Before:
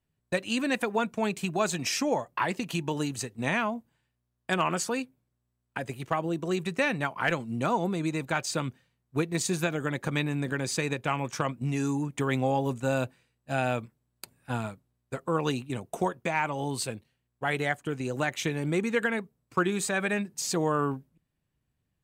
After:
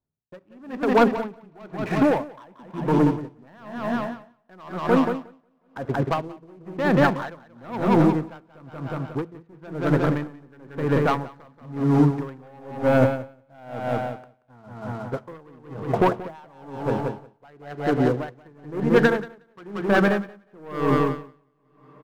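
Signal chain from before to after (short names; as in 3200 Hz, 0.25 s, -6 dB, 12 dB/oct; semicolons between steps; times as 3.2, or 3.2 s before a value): Wiener smoothing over 15 samples; LPF 1600 Hz 24 dB/oct; low shelf 87 Hz -6.5 dB; de-hum 56.5 Hz, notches 4; sample leveller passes 3; feedback echo 0.181 s, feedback 48%, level -5 dB; on a send at -17 dB: reverb RT60 3.4 s, pre-delay 24 ms; on the sum: dB-linear tremolo 1 Hz, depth 32 dB; gain +4 dB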